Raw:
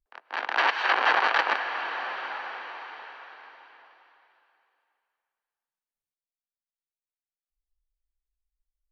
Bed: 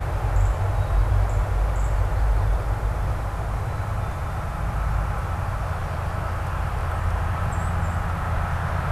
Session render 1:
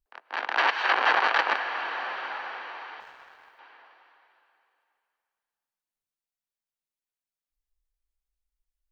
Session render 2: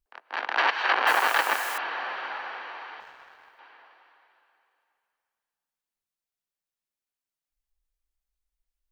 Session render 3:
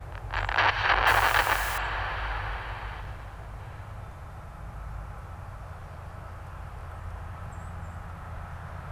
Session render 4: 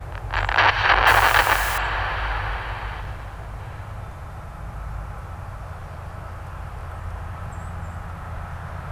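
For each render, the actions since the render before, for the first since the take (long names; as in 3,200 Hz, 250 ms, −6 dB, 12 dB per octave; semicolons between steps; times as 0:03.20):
0:03.00–0:03.59: mu-law and A-law mismatch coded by A
0:01.07–0:01.78: spike at every zero crossing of −27 dBFS
mix in bed −14.5 dB
level +6.5 dB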